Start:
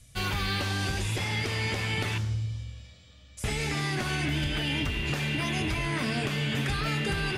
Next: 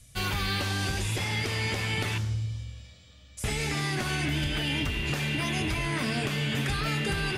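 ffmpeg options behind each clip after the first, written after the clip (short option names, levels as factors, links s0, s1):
-af "highshelf=f=7900:g=4.5"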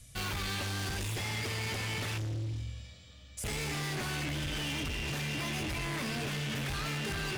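-af "asoftclip=type=hard:threshold=0.0211"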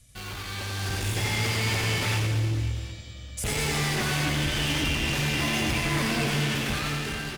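-filter_complex "[0:a]dynaudnorm=f=260:g=7:m=3.16,asplit=2[s0][s1];[s1]aecho=0:1:90|202.5|343.1|518.9|738.6:0.631|0.398|0.251|0.158|0.1[s2];[s0][s2]amix=inputs=2:normalize=0,volume=0.708"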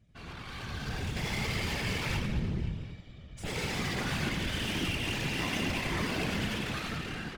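-af "adynamicsmooth=sensitivity=6.5:basefreq=2200,afftfilt=real='hypot(re,im)*cos(2*PI*random(0))':imag='hypot(re,im)*sin(2*PI*random(1))':win_size=512:overlap=0.75"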